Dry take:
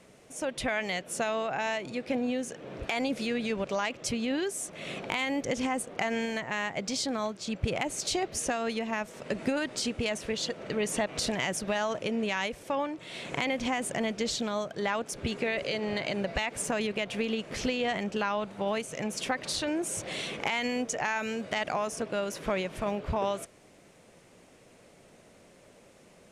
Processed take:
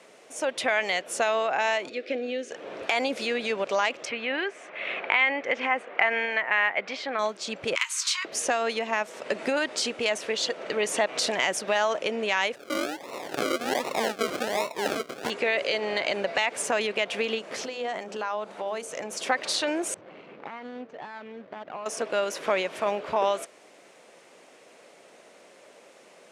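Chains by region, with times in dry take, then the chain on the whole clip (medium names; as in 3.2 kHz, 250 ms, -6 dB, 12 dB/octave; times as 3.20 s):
1.89–2.51 s: low-pass 4.4 kHz + static phaser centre 380 Hz, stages 4
4.05–7.19 s: resonant low-pass 2.2 kHz, resonance Q 1.8 + bass shelf 380 Hz -8 dB
7.75–8.25 s: brick-wall FIR high-pass 920 Hz + doubling 24 ms -12 dB + three bands compressed up and down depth 70%
12.55–15.30 s: low-pass 9.4 kHz + delay 231 ms -23.5 dB + decimation with a swept rate 39×, swing 60% 1.3 Hz
17.38–19.27 s: dynamic bell 2.6 kHz, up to -7 dB, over -46 dBFS, Q 0.96 + compression 3:1, threshold -32 dBFS + hum notches 50/100/150/200/250/300/350/400/450/500 Hz
19.94–21.86 s: median filter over 25 samples + low-pass 1.8 kHz + peaking EQ 660 Hz -11.5 dB 2.5 oct
whole clip: high-pass 420 Hz 12 dB/octave; treble shelf 10 kHz -9.5 dB; trim +6.5 dB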